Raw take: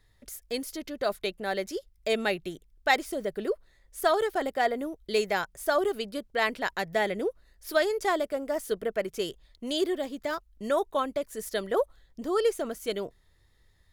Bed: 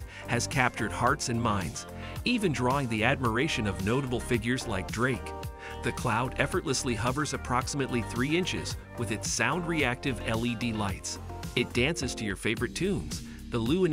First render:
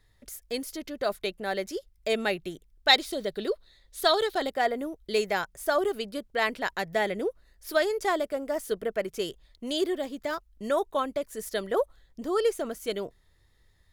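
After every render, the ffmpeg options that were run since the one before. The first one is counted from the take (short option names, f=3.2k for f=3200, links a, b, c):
-filter_complex "[0:a]asettb=1/sr,asplit=3[a][b][c];[a]atrim=end=2.884[d];[b]atrim=start=2.88:end=4.5,asetpts=PTS-STARTPTS,afade=t=in:d=0.004:c=qsin,afade=t=out:st=1.616:d=0.004:c=qsin,equalizer=f=3.9k:w=2.4:g=14.5[e];[c]atrim=start=4.496[f];[d][e]acrossfade=d=0.004:c1=hsin:c2=qsin[g];[g][f]acrossfade=d=0.004:c1=qsin:c2=hsin"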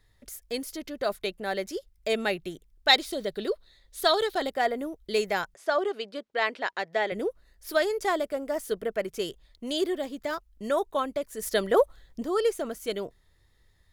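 -filter_complex "[0:a]asettb=1/sr,asplit=3[a][b][c];[a]atrim=end=5.544[d];[b]atrim=start=5.54:end=7.12,asetpts=PTS-STARTPTS,afade=t=in:d=0.004:c=qsin,afade=t=out:st=1.576:d=0.004:c=qsin,highpass=330,lowpass=5.1k[e];[c]atrim=start=7.116[f];[d][e]acrossfade=d=0.004:c1=hsin:c2=qsin[g];[g][f]acrossfade=d=0.004:c1=qsin:c2=hsin,asettb=1/sr,asplit=3[h][i][j];[h]atrim=end=11.424[k];[i]atrim=start=11.42:end=12.23,asetpts=PTS-STARTPTS,afade=t=in:d=0.004:c=qsin,afade=t=out:st=0.806:d=0.004:c=qsin,acontrast=29[l];[j]atrim=start=12.226[m];[k][l]acrossfade=d=0.004:c1=hsin:c2=qsin[n];[n][m]acrossfade=d=0.004:c1=qsin:c2=hsin"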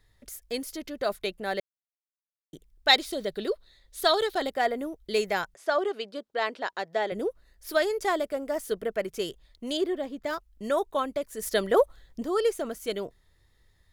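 -filter_complex "[0:a]asettb=1/sr,asplit=3[a][b][c];[a]atrim=end=6.104[d];[b]atrim=start=6.1:end=7.26,asetpts=PTS-STARTPTS,afade=t=in:d=0.004:c=qsin,afade=t=out:st=1.156:d=0.004:c=qsin,equalizer=f=2.2k:w=1.7:g=-6[e];[c]atrim=start=7.256[f];[d][e]acrossfade=d=0.004:c1=hsin:c2=qsin[g];[g][f]acrossfade=d=0.004:c1=qsin:c2=hsin,asettb=1/sr,asplit=3[h][i][j];[h]atrim=end=9.774[k];[i]atrim=start=9.77:end=10.26,asetpts=PTS-STARTPTS,afade=t=in:d=0.004:c=qsin,afade=t=out:st=0.486:d=0.004:c=qsin,highshelf=f=3.4k:g=-10.5[l];[j]atrim=start=10.256[m];[k][l]acrossfade=d=0.004:c1=hsin:c2=qsin[n];[n][m]acrossfade=d=0.004:c1=qsin:c2=hsin,asplit=3[o][p][q];[o]atrim=end=1.6,asetpts=PTS-STARTPTS,afade=t=out:st=1.596:d=0.004:c=hsin[r];[p]atrim=start=1.6:end=2.53,asetpts=PTS-STARTPTS,volume=0[s];[q]atrim=start=2.53,asetpts=PTS-STARTPTS,afade=t=in:d=0.004:c=hsin[t];[r][s][t]concat=n=3:v=0:a=1"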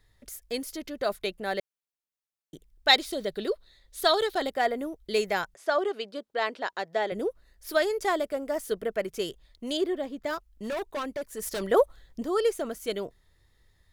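-filter_complex "[0:a]asettb=1/sr,asplit=3[a][b][c];[a]atrim=end=10.354[d];[b]atrim=start=10.35:end=11.62,asetpts=PTS-STARTPTS,afade=t=in:d=0.004:c=qsin,afade=t=out:st=1.266:d=0.004:c=qsin,asoftclip=type=hard:threshold=-29dB[e];[c]atrim=start=11.616[f];[d][e]acrossfade=d=0.004:c1=hsin:c2=qsin[g];[g][f]acrossfade=d=0.004:c1=qsin:c2=hsin"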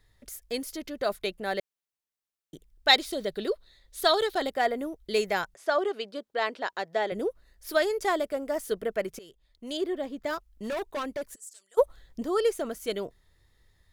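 -filter_complex "[0:a]asplit=3[a][b][c];[a]afade=t=out:st=11.34:d=0.02[d];[b]bandpass=f=7.9k:t=q:w=6,afade=t=in:st=11.34:d=0.02,afade=t=out:st=11.77:d=0.02[e];[c]afade=t=in:st=11.77:d=0.02[f];[d][e][f]amix=inputs=3:normalize=0,asplit=2[g][h];[g]atrim=end=9.19,asetpts=PTS-STARTPTS,afade=t=out:st=9.186:d=0.004:c=hsin:silence=0.0794328[i];[h]atrim=start=9.19,asetpts=PTS-STARTPTS,afade=t=in:d=0.88:silence=0.0794328[j];[i][j]concat=n=2:v=0:a=1"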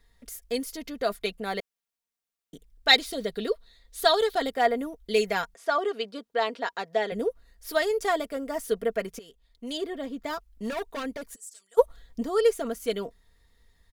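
-af "aecho=1:1:4.3:0.59"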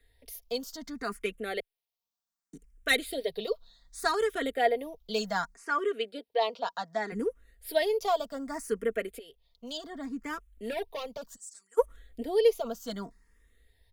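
-filter_complex "[0:a]acrossover=split=140|1300[a][b][c];[c]asoftclip=type=tanh:threshold=-17.5dB[d];[a][b][d]amix=inputs=3:normalize=0,asplit=2[e][f];[f]afreqshift=0.66[g];[e][g]amix=inputs=2:normalize=1"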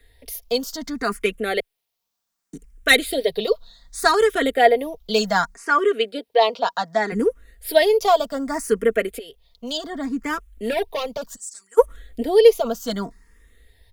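-af "volume=11dB,alimiter=limit=-1dB:level=0:latency=1"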